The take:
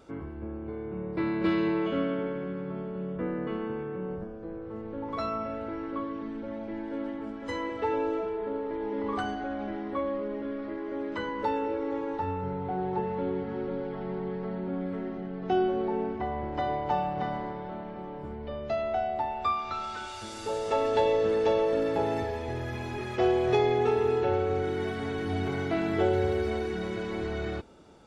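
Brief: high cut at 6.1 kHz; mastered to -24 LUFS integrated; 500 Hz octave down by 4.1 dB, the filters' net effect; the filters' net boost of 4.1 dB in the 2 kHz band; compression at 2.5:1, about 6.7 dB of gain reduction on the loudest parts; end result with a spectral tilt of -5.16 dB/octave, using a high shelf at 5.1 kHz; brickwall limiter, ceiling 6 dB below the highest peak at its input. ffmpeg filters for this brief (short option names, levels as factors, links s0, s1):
-af "lowpass=6100,equalizer=f=500:t=o:g=-5.5,equalizer=f=2000:t=o:g=6.5,highshelf=f=5100:g=-6.5,acompressor=threshold=0.0224:ratio=2.5,volume=4.73,alimiter=limit=0.188:level=0:latency=1"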